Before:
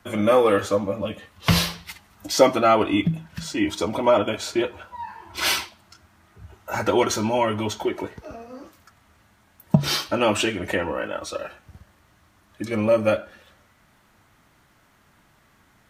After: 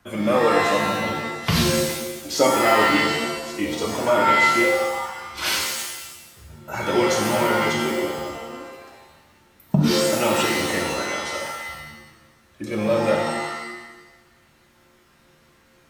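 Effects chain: 3.01–3.59 s: slow attack 175 ms; pitch-shifted reverb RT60 1 s, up +7 st, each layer -2 dB, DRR 0.5 dB; trim -3.5 dB

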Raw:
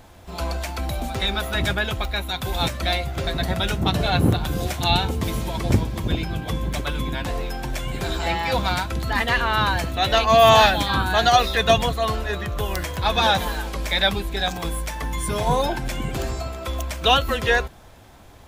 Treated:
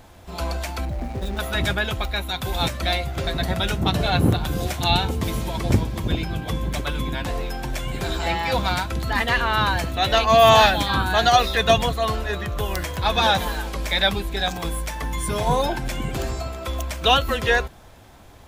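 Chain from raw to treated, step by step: 0.85–1.39 s: median filter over 41 samples

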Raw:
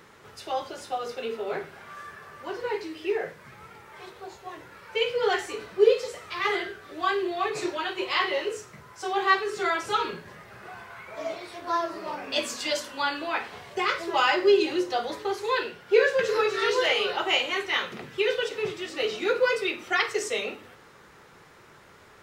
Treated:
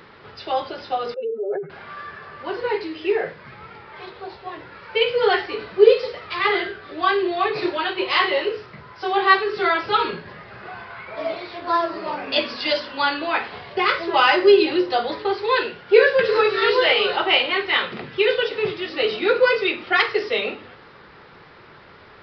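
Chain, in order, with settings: 1.14–1.70 s: spectral contrast enhancement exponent 2.8; resampled via 11.025 kHz; trim +6.5 dB

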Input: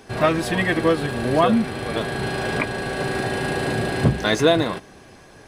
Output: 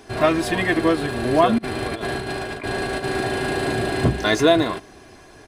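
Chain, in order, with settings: 1.58–3.04 s: compressor with a negative ratio -27 dBFS, ratio -0.5; comb 2.9 ms, depth 40%

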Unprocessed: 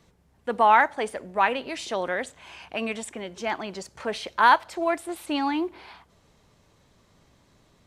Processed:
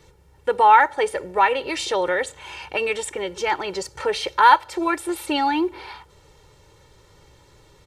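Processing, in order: comb 2.2 ms, depth 84%; in parallel at +1.5 dB: compression, threshold -26 dBFS, peak gain reduction 16 dB; on the sum: trim -1 dB

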